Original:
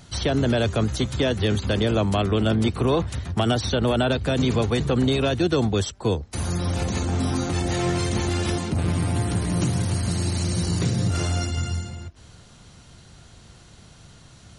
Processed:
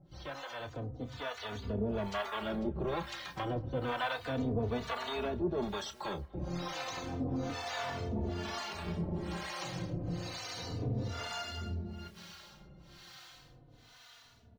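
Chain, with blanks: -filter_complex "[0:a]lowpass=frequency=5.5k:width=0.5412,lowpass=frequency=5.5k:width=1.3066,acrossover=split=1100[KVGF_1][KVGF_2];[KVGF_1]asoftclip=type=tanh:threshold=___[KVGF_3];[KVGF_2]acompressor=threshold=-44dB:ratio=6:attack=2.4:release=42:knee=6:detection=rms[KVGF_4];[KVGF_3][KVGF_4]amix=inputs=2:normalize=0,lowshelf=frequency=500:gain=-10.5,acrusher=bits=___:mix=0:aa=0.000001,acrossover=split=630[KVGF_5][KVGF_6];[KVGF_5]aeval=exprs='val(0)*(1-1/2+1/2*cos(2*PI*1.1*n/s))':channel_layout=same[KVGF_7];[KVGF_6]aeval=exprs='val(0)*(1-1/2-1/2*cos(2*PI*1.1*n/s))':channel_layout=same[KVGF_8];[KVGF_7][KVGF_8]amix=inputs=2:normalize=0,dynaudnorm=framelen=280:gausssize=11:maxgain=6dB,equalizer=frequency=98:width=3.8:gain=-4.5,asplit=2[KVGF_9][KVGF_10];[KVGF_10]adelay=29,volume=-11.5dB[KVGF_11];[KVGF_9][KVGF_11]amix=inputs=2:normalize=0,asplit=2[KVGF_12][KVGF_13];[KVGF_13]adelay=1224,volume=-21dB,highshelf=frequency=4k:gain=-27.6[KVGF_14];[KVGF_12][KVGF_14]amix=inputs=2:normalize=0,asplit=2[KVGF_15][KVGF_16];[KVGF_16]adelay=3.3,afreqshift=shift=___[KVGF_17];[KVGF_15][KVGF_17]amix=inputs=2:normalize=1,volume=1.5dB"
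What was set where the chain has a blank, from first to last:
-24.5dB, 10, -0.31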